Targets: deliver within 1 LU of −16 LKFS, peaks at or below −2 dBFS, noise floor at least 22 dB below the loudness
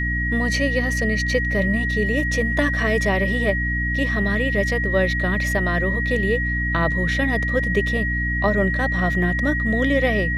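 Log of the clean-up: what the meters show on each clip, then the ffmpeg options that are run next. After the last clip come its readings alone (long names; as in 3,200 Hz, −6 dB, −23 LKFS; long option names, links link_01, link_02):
mains hum 60 Hz; hum harmonics up to 300 Hz; level of the hum −22 dBFS; interfering tone 1,900 Hz; level of the tone −23 dBFS; integrated loudness −20.5 LKFS; sample peak −7.0 dBFS; target loudness −16.0 LKFS
→ -af "bandreject=frequency=60:width_type=h:width=6,bandreject=frequency=120:width_type=h:width=6,bandreject=frequency=180:width_type=h:width=6,bandreject=frequency=240:width_type=h:width=6,bandreject=frequency=300:width_type=h:width=6"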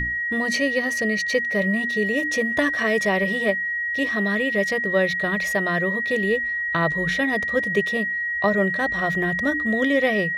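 mains hum none found; interfering tone 1,900 Hz; level of the tone −23 dBFS
→ -af "bandreject=frequency=1900:width=30"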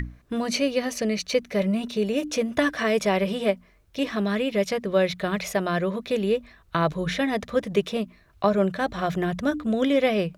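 interfering tone none found; integrated loudness −25.5 LKFS; sample peak −7.5 dBFS; target loudness −16.0 LKFS
→ -af "volume=9.5dB,alimiter=limit=-2dB:level=0:latency=1"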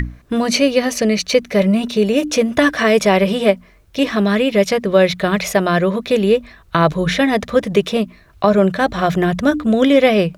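integrated loudness −16.0 LKFS; sample peak −2.0 dBFS; background noise floor −48 dBFS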